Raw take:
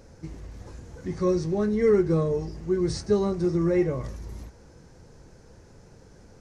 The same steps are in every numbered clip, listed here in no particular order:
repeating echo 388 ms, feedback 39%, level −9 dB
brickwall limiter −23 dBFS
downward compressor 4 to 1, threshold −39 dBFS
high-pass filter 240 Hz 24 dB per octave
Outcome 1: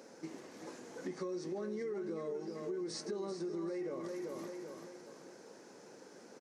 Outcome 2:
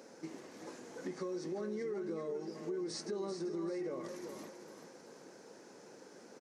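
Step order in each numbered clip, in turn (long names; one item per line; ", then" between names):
high-pass filter, then brickwall limiter, then repeating echo, then downward compressor
high-pass filter, then brickwall limiter, then downward compressor, then repeating echo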